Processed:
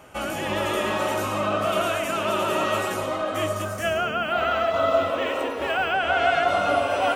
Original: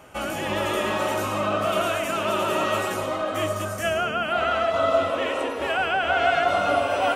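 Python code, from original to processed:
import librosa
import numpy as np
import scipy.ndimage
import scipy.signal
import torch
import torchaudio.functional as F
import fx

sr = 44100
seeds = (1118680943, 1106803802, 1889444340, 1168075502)

y = fx.resample_linear(x, sr, factor=2, at=(3.62, 5.95))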